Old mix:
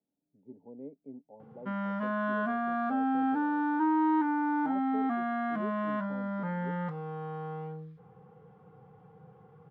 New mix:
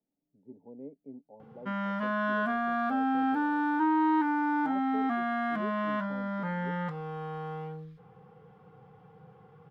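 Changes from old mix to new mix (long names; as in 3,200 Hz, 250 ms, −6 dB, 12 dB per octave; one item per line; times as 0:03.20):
background: add high-shelf EQ 2,100 Hz +10.5 dB
master: remove high-pass filter 54 Hz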